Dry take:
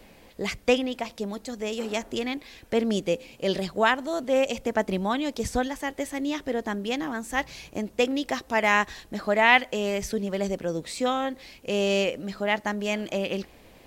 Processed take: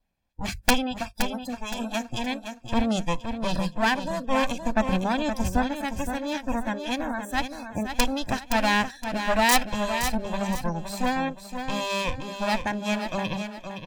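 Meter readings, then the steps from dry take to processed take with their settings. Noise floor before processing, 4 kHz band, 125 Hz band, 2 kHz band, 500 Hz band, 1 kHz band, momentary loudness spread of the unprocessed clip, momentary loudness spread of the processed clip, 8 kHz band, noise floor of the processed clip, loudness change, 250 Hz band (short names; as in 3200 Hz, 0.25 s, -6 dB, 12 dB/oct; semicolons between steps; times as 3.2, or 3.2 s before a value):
-53 dBFS, +1.5 dB, +3.5 dB, -1.5 dB, -4.0 dB, +2.0 dB, 10 LU, 8 LU, +5.0 dB, -48 dBFS, -0.5 dB, +1.5 dB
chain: minimum comb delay 1.2 ms; low shelf 180 Hz +9.5 dB; wrapped overs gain 8.5 dB; notches 50/100/150/200 Hz; spectral noise reduction 29 dB; on a send: feedback echo 0.518 s, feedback 33%, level -8 dB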